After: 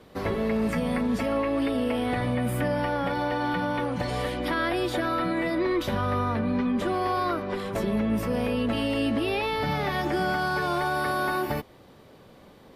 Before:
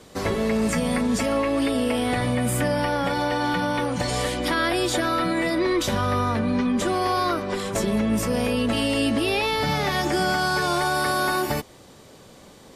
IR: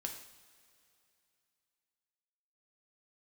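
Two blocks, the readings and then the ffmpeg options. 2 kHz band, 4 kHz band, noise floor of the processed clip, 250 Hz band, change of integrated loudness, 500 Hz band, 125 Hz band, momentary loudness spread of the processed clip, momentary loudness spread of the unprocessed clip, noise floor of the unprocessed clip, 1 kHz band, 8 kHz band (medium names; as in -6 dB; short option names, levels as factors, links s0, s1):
-4.0 dB, -8.0 dB, -52 dBFS, -3.0 dB, -3.5 dB, -3.0 dB, -3.0 dB, 3 LU, 3 LU, -48 dBFS, -3.5 dB, -14.5 dB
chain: -af "equalizer=f=7300:t=o:w=1.2:g=-15,volume=0.708"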